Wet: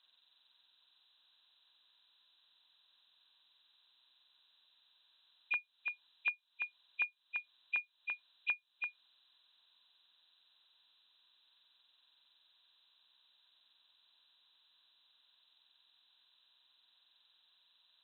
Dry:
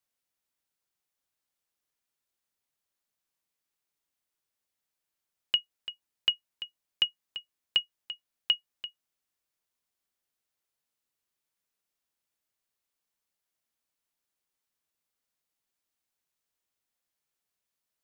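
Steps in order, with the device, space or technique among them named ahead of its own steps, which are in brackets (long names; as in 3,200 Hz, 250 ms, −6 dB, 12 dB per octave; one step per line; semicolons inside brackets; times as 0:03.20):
hearing aid with frequency lowering (hearing-aid frequency compression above 2,300 Hz 4 to 1; downward compressor 4 to 1, threshold −41 dBFS, peak gain reduction 18.5 dB; loudspeaker in its box 300–6,500 Hz, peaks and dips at 430 Hz −9 dB, 1,000 Hz +10 dB, 1,600 Hz +9 dB, 2,300 Hz −4 dB, 3,700 Hz +4 dB)
level +6.5 dB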